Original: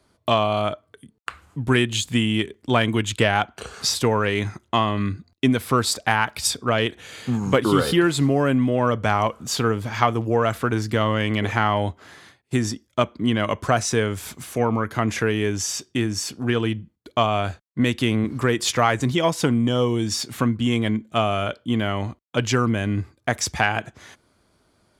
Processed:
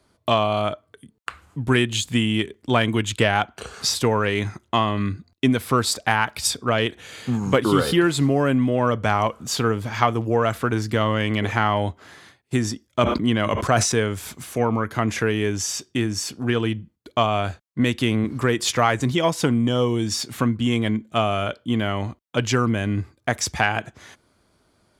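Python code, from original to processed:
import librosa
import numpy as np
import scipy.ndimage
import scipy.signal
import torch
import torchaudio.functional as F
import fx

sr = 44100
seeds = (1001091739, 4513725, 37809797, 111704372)

y = fx.sustainer(x, sr, db_per_s=50.0, at=(12.87, 13.92))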